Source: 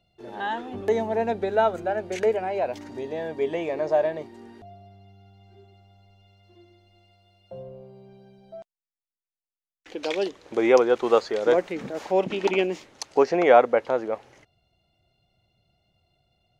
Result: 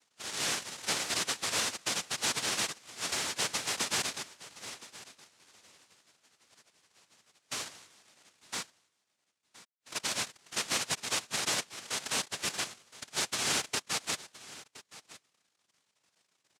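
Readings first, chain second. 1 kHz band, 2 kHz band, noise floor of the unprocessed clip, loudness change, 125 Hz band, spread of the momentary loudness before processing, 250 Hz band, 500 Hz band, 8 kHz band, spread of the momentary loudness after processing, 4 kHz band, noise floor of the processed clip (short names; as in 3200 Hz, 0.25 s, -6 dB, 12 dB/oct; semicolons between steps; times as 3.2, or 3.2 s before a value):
-13.0 dB, -2.5 dB, under -85 dBFS, -8.5 dB, -8.0 dB, 16 LU, -16.5 dB, -23.5 dB, n/a, 17 LU, +8.0 dB, -80 dBFS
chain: FFT band-pass 400–1200 Hz; reverb removal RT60 0.99 s; compressor 2.5:1, threshold -34 dBFS, peak gain reduction 15 dB; soft clip -32 dBFS, distortion -10 dB; noise vocoder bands 1; on a send: echo 1.018 s -18 dB; on the sum: gain +4.5 dB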